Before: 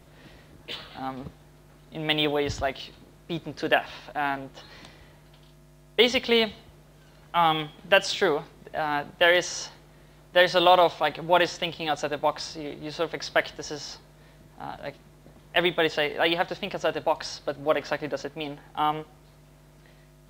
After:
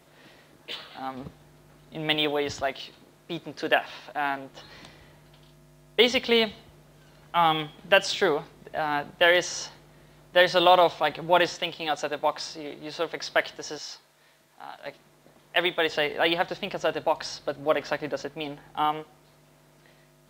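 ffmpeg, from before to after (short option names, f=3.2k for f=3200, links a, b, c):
-af "asetnsamples=n=441:p=0,asendcmd='1.15 highpass f 82;2.15 highpass f 250;4.53 highpass f 71;11.54 highpass f 280;13.78 highpass f 1100;14.86 highpass f 400;15.89 highpass f 97;18.85 highpass f 250',highpass=f=320:p=1"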